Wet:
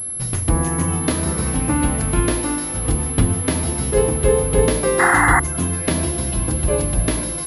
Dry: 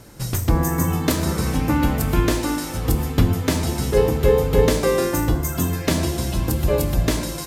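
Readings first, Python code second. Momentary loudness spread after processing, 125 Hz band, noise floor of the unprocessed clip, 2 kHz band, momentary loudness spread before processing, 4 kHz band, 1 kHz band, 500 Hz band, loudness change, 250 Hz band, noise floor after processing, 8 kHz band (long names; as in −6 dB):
6 LU, 0.0 dB, −29 dBFS, +8.5 dB, 6 LU, −2.0 dB, +5.5 dB, 0.0 dB, +2.0 dB, 0.0 dB, −26 dBFS, +9.0 dB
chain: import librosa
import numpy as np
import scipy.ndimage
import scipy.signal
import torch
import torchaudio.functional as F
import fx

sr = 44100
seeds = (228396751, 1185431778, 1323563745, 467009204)

y = fx.spec_paint(x, sr, seeds[0], shape='noise', start_s=4.99, length_s=0.41, low_hz=690.0, high_hz=2100.0, level_db=-15.0)
y = fx.pwm(y, sr, carrier_hz=11000.0)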